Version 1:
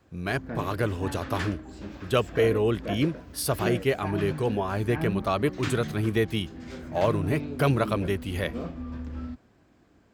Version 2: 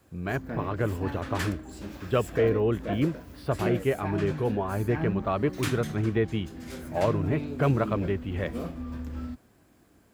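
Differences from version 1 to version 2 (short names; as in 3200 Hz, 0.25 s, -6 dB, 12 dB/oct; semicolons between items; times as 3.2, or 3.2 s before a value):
speech: add air absorption 430 m; background: remove running mean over 4 samples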